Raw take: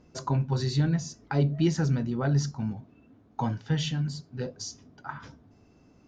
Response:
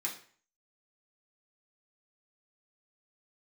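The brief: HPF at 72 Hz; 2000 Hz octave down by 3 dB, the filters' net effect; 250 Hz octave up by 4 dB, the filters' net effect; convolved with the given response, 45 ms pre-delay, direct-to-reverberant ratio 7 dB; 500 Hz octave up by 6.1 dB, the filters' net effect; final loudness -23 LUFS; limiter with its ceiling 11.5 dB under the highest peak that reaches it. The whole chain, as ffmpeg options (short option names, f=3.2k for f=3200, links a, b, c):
-filter_complex "[0:a]highpass=72,equalizer=f=250:t=o:g=4.5,equalizer=f=500:t=o:g=6.5,equalizer=f=2k:t=o:g=-5,alimiter=limit=-19.5dB:level=0:latency=1,asplit=2[a][b];[1:a]atrim=start_sample=2205,adelay=45[c];[b][c]afir=irnorm=-1:irlink=0,volume=-9dB[d];[a][d]amix=inputs=2:normalize=0,volume=6.5dB"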